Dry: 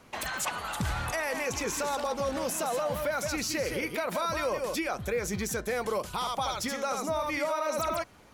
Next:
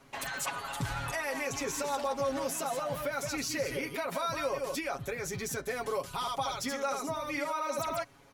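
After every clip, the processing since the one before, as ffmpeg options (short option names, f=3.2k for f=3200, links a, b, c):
-af "aecho=1:1:7.3:0.8,volume=-5dB"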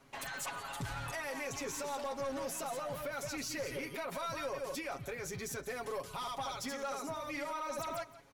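-af "aecho=1:1:172:0.119,aeval=exprs='(tanh(25.1*val(0)+0.15)-tanh(0.15))/25.1':c=same,volume=-4dB"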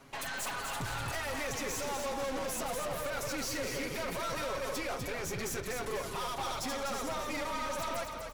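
-filter_complex "[0:a]aeval=exprs='0.0282*(cos(1*acos(clip(val(0)/0.0282,-1,1)))-cos(1*PI/2))+0.00631*(cos(5*acos(clip(val(0)/0.0282,-1,1)))-cos(5*PI/2))+0.00447*(cos(6*acos(clip(val(0)/0.0282,-1,1)))-cos(6*PI/2))':c=same,asplit=6[a][b][c][d][e][f];[b]adelay=248,afreqshift=-34,volume=-6dB[g];[c]adelay=496,afreqshift=-68,volume=-13.3dB[h];[d]adelay=744,afreqshift=-102,volume=-20.7dB[i];[e]adelay=992,afreqshift=-136,volume=-28dB[j];[f]adelay=1240,afreqshift=-170,volume=-35.3dB[k];[a][g][h][i][j][k]amix=inputs=6:normalize=0"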